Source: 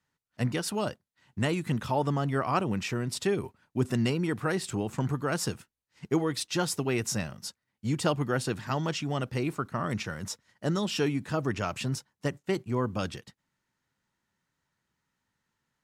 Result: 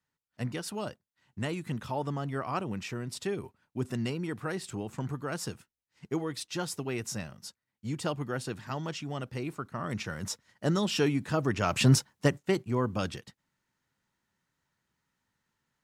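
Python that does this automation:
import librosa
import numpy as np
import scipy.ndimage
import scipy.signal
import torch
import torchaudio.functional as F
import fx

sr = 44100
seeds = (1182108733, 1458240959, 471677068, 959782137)

y = fx.gain(x, sr, db=fx.line((9.71, -5.5), (10.28, 1.0), (11.58, 1.0), (11.91, 11.0), (12.62, 0.0)))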